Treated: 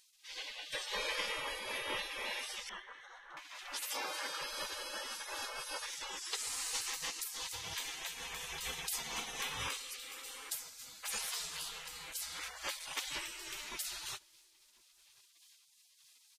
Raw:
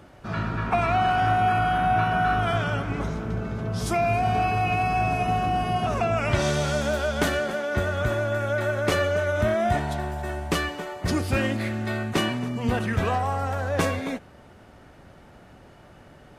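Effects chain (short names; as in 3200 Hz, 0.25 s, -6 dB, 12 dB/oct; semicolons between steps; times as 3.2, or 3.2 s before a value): 2.69–3.37 running mean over 18 samples; spectral gate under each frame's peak -30 dB weak; 3.92–4.41 HPF 140 Hz 12 dB/oct; outdoor echo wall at 180 m, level -27 dB; noise-modulated level, depth 60%; gain +8.5 dB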